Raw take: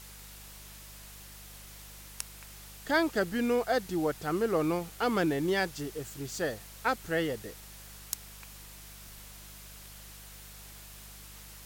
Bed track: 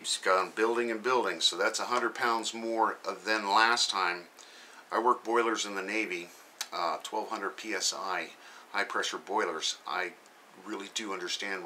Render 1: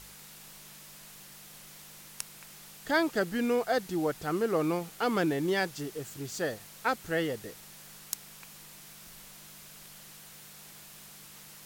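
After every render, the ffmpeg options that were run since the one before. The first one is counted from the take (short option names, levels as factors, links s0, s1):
-af "bandreject=f=50:t=h:w=4,bandreject=f=100:t=h:w=4"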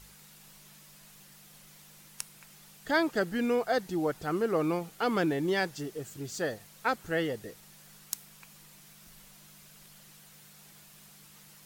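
-af "afftdn=nr=6:nf=-51"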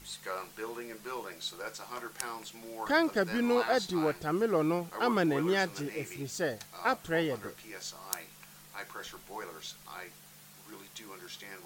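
-filter_complex "[1:a]volume=0.251[s0];[0:a][s0]amix=inputs=2:normalize=0"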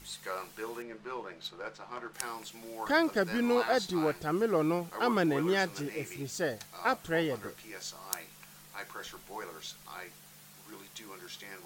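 -filter_complex "[0:a]asettb=1/sr,asplit=3[s0][s1][s2];[s0]atrim=end=0.824[s3];[s1]atrim=start=0.82:end=2.14,asetpts=PTS-STARTPTS,afade=t=in:d=0.004:c=qsin,afade=t=out:st=1.316:d=0.004:c=qsin,adynamicsmooth=sensitivity=4.5:basefreq=2800[s4];[s2]atrim=start=2.136[s5];[s3][s4]acrossfade=d=0.004:c1=hsin:c2=qsin[s6];[s6][s5]acrossfade=d=0.004:c1=qsin:c2=hsin"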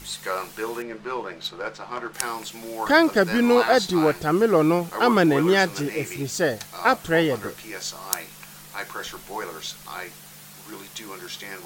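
-af "volume=3.16"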